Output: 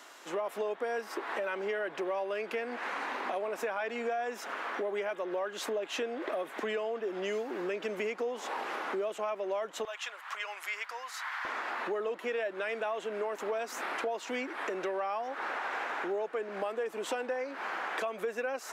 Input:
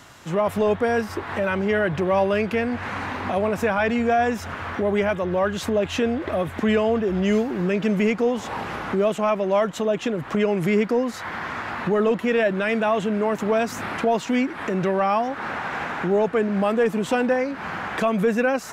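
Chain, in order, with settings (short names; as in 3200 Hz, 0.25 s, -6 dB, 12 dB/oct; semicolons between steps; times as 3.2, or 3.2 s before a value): HPF 330 Hz 24 dB/oct, from 9.85 s 950 Hz, from 11.45 s 350 Hz; compressor 5:1, threshold -27 dBFS, peak gain reduction 10.5 dB; gain -4.5 dB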